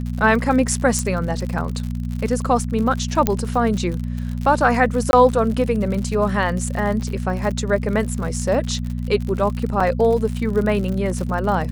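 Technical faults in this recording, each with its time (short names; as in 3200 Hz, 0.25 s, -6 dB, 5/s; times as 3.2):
crackle 71/s -26 dBFS
hum 60 Hz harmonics 4 -25 dBFS
0.99 pop -8 dBFS
3.27 pop -2 dBFS
5.11–5.13 gap 21 ms
9.8 gap 4.5 ms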